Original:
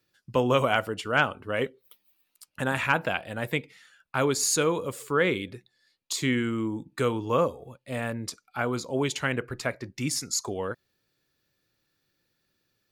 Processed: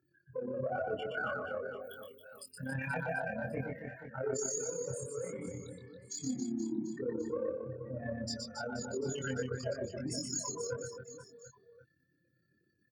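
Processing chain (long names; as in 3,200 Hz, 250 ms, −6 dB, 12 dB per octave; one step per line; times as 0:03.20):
expanding power law on the bin magnitudes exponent 3.7
high-pass filter 110 Hz
reversed playback
downward compressor 8 to 1, threshold −35 dBFS, peak gain reduction 15.5 dB
reversed playback
amplitude modulation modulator 33 Hz, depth 45%
in parallel at −7.5 dB: soft clipping −35.5 dBFS, distortion −15 dB
on the sum: auto-filter notch square 0.34 Hz 350–3,700 Hz
double-tracking delay 23 ms −2.5 dB
reverse bouncing-ball delay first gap 120 ms, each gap 1.3×, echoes 5
level −1.5 dB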